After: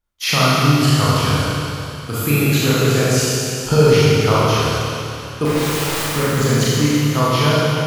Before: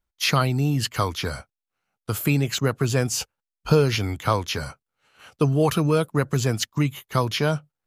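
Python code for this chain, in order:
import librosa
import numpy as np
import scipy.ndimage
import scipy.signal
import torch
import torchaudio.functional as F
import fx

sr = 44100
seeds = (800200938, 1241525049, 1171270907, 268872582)

y = fx.overflow_wrap(x, sr, gain_db=25.5, at=(5.45, 6.16))
y = fx.rev_schroeder(y, sr, rt60_s=2.9, comb_ms=27, drr_db=-9.0)
y = F.gain(torch.from_numpy(y), -1.0).numpy()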